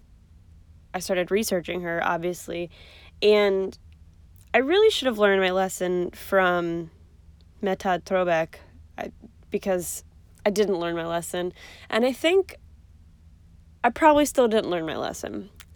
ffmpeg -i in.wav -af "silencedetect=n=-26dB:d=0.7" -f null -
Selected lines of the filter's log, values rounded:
silence_start: 0.00
silence_end: 0.95 | silence_duration: 0.95
silence_start: 3.69
silence_end: 4.54 | silence_duration: 0.86
silence_start: 6.82
silence_end: 7.63 | silence_duration: 0.81
silence_start: 12.49
silence_end: 13.84 | silence_duration: 1.35